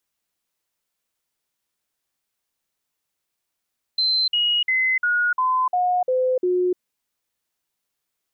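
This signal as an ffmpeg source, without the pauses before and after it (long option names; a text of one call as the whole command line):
ffmpeg -f lavfi -i "aevalsrc='0.141*clip(min(mod(t,0.35),0.3-mod(t,0.35))/0.005,0,1)*sin(2*PI*4090*pow(2,-floor(t/0.35)/2)*mod(t,0.35))':duration=2.8:sample_rate=44100" out.wav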